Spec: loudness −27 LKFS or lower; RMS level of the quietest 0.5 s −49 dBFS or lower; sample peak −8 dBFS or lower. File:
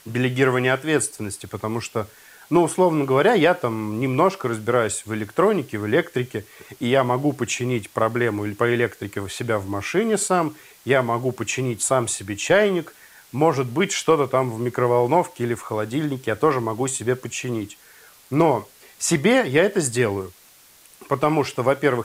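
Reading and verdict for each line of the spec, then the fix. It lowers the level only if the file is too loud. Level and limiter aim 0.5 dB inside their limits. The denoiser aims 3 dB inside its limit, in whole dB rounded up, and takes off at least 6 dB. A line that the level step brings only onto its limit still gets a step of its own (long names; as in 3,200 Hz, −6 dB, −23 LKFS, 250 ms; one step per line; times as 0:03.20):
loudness −21.5 LKFS: out of spec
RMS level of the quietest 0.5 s −51 dBFS: in spec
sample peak −4.5 dBFS: out of spec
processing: level −6 dB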